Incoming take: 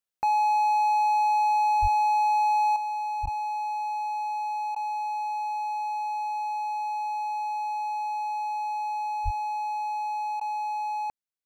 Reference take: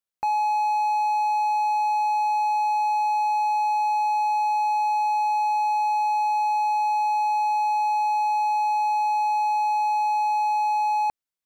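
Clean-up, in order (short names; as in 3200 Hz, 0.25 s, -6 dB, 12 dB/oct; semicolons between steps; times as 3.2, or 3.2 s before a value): 1.81–1.93 HPF 140 Hz 24 dB/oct; 3.22–3.34 HPF 140 Hz 24 dB/oct; 9.24–9.36 HPF 140 Hz 24 dB/oct; interpolate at 3.26/4.75/10.4, 10 ms; gain 0 dB, from 2.76 s +7.5 dB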